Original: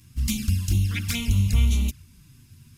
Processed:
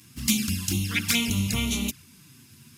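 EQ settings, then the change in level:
high-pass filter 210 Hz 12 dB per octave
+6.0 dB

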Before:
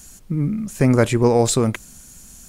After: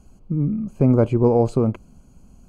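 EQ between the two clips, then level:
moving average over 24 samples
0.0 dB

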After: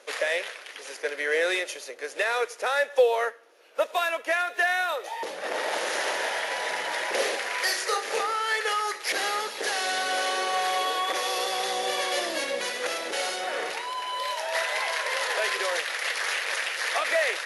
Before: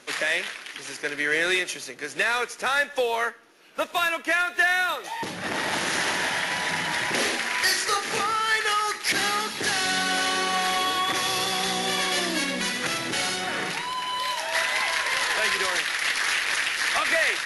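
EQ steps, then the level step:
high-pass with resonance 510 Hz, resonance Q 3.4
−4.5 dB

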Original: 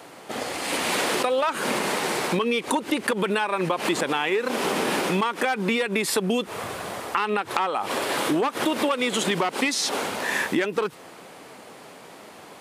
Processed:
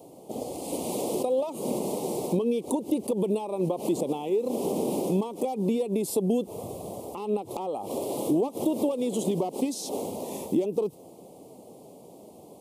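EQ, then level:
Butterworth band-reject 1,600 Hz, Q 0.53
parametric band 4,200 Hz −13.5 dB 2.1 octaves
0.0 dB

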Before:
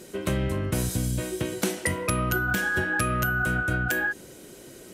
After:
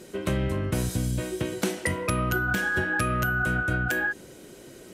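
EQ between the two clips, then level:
high-shelf EQ 6,900 Hz −6 dB
0.0 dB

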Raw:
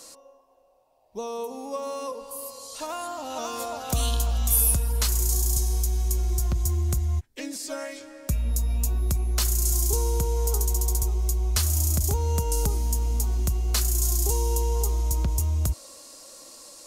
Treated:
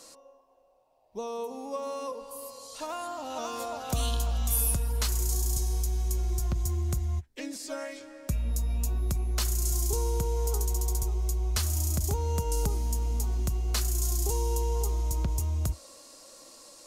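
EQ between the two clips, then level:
parametric band 69 Hz −5 dB 0.29 octaves
high-shelf EQ 6,300 Hz −5.5 dB
−2.5 dB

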